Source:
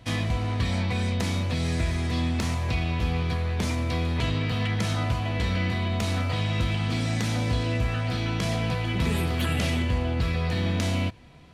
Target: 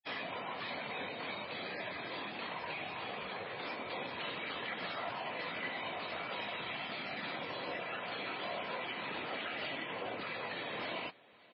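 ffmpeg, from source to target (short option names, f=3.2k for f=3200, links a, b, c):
-filter_complex "[0:a]acrossover=split=440 4500:gain=0.224 1 0.0891[a][b][c];[a][b][c]amix=inputs=3:normalize=0,alimiter=level_in=2dB:limit=-24dB:level=0:latency=1:release=17,volume=-2dB,acrusher=bits=6:mix=0:aa=0.5,afftfilt=real='hypot(re,im)*cos(2*PI*random(0))':imag='hypot(re,im)*sin(2*PI*random(1))':win_size=512:overlap=0.75,highpass=260,lowpass=6.2k,asplit=2[d][e];[e]aecho=0:1:567|1134|1701:0.0708|0.0368|0.0191[f];[d][f]amix=inputs=2:normalize=0,volume=1.5dB" -ar 16000 -c:a libmp3lame -b:a 16k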